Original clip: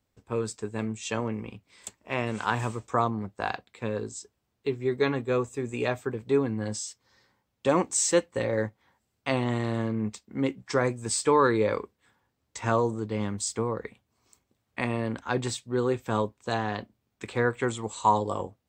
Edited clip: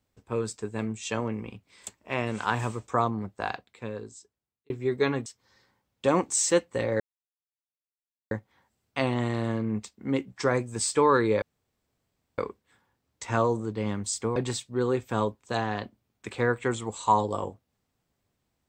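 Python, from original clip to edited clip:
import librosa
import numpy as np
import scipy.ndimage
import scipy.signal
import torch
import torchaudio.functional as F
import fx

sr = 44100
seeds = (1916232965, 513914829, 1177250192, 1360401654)

y = fx.edit(x, sr, fx.fade_out_span(start_s=3.29, length_s=1.41),
    fx.cut(start_s=5.26, length_s=1.61),
    fx.insert_silence(at_s=8.61, length_s=1.31),
    fx.insert_room_tone(at_s=11.72, length_s=0.96),
    fx.cut(start_s=13.7, length_s=1.63), tone=tone)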